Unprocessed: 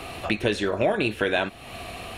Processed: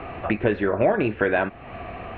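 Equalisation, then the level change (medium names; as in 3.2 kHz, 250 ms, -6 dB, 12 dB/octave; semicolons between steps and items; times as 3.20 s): low-pass 2.1 kHz 24 dB/octave; +3.0 dB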